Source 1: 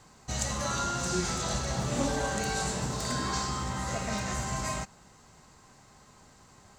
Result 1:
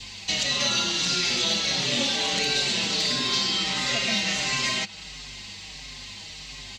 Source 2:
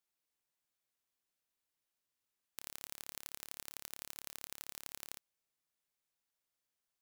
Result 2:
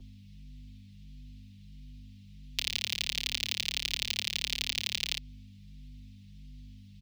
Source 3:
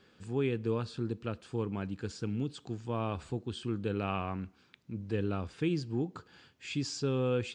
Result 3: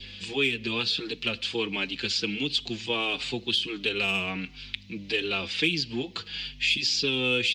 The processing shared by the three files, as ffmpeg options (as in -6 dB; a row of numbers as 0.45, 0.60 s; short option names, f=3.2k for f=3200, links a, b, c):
-filter_complex "[0:a]adynamicequalizer=threshold=0.00178:dfrequency=1400:dqfactor=4.8:tfrequency=1400:tqfactor=4.8:attack=5:release=100:ratio=0.375:range=3:mode=boostabove:tftype=bell,acrossover=split=110|4200[a][b][c];[a]acompressor=threshold=-54dB:ratio=6[d];[b]aexciter=amount=7.6:drive=9.8:freq=2.2k[e];[d][e][c]amix=inputs=3:normalize=0,aeval=exprs='val(0)+0.00282*(sin(2*PI*50*n/s)+sin(2*PI*2*50*n/s)/2+sin(2*PI*3*50*n/s)/3+sin(2*PI*4*50*n/s)/4+sin(2*PI*5*50*n/s)/5)':c=same,acrossover=split=180|520|6200[f][g][h][i];[f]acompressor=threshold=-54dB:ratio=4[j];[g]acompressor=threshold=-37dB:ratio=4[k];[h]acompressor=threshold=-31dB:ratio=4[l];[i]acompressor=threshold=-47dB:ratio=4[m];[j][k][l][m]amix=inputs=4:normalize=0,asplit=2[n][o];[o]adelay=5.3,afreqshift=-1.5[p];[n][p]amix=inputs=2:normalize=1,volume=9dB"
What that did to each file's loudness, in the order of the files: +8.5, +15.5, +8.0 LU